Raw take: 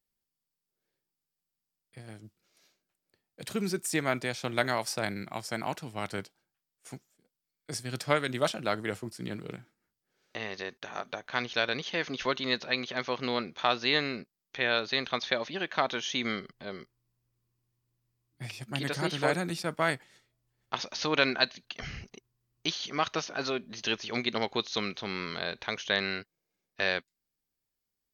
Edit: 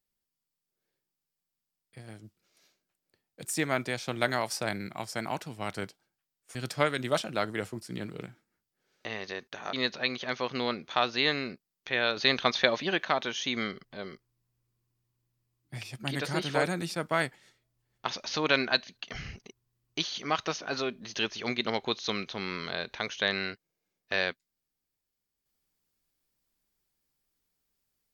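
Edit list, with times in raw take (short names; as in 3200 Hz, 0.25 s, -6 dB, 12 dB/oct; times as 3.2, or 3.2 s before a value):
3.45–3.81 cut
6.91–7.85 cut
11.03–12.41 cut
14.85–15.73 gain +5 dB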